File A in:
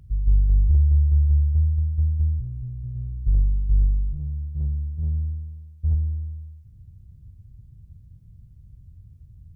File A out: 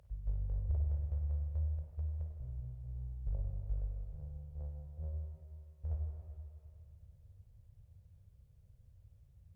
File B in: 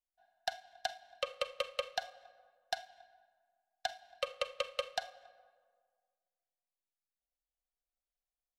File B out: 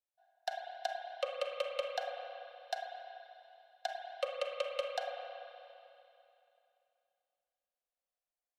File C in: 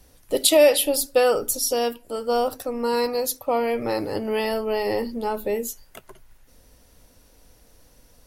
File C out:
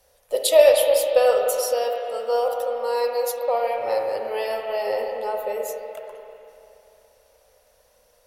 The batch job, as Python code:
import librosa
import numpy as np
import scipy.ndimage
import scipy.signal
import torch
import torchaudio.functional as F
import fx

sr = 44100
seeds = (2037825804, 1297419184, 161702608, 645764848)

y = fx.low_shelf_res(x, sr, hz=390.0, db=-11.0, q=3.0)
y = fx.rev_spring(y, sr, rt60_s=2.8, pass_ms=(31, 48, 53), chirp_ms=80, drr_db=1.0)
y = fx.cheby_harmonics(y, sr, harmonics=(3, 4), levels_db=(-26, -40), full_scale_db=2.0)
y = y * 10.0 ** (-3.5 / 20.0)